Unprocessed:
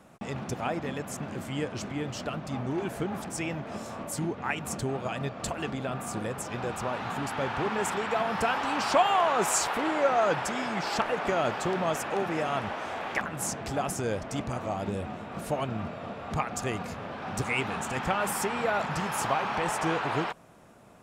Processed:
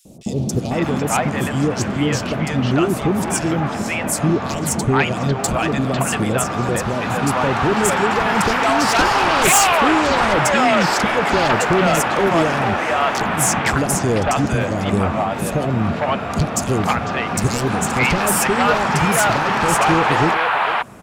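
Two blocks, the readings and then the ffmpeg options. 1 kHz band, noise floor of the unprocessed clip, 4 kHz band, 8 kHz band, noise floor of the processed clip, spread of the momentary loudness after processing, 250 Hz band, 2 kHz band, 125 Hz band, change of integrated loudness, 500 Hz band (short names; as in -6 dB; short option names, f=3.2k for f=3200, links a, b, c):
+12.0 dB, -42 dBFS, +13.5 dB, +14.0 dB, -25 dBFS, 6 LU, +14.5 dB, +14.0 dB, +15.0 dB, +12.5 dB, +11.0 dB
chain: -filter_complex "[0:a]aeval=exprs='0.299*sin(PI/2*3.98*val(0)/0.299)':c=same,aeval=exprs='0.316*(cos(1*acos(clip(val(0)/0.316,-1,1)))-cos(1*PI/2))+0.0158*(cos(3*acos(clip(val(0)/0.316,-1,1)))-cos(3*PI/2))':c=same,acrossover=split=560|3900[a][b][c];[a]adelay=50[d];[b]adelay=500[e];[d][e][c]amix=inputs=3:normalize=0,volume=1dB"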